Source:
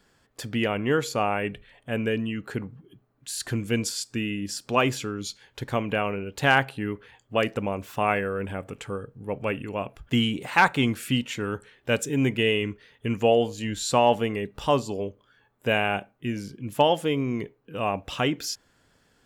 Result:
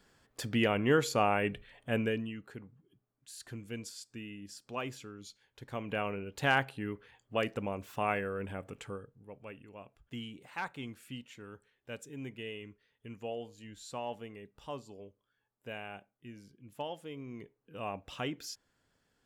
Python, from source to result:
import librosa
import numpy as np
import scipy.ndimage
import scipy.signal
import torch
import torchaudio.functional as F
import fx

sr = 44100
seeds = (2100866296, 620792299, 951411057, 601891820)

y = fx.gain(x, sr, db=fx.line((1.95, -3.0), (2.55, -16.0), (5.6, -16.0), (6.0, -8.0), (8.87, -8.0), (9.34, -19.5), (17.08, -19.5), (17.77, -12.0)))